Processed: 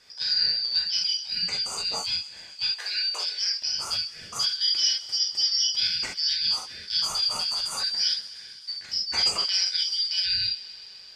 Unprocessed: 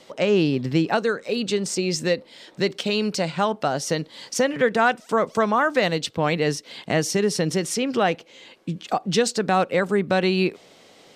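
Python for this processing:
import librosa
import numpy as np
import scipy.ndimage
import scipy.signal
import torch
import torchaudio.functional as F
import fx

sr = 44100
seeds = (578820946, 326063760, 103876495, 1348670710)

y = fx.band_shuffle(x, sr, order='4321')
y = fx.highpass(y, sr, hz=400.0, slope=24, at=(2.64, 3.45))
y = fx.peak_eq(y, sr, hz=1200.0, db=10.5, octaves=1.9, at=(9.34, 9.76))
y = fx.echo_wet_highpass(y, sr, ms=129, feedback_pct=81, hz=1600.0, wet_db=-19.0)
y = fx.rev_gated(y, sr, seeds[0], gate_ms=90, shape='flat', drr_db=-2.0)
y = y * 10.0 ** (-9.0 / 20.0)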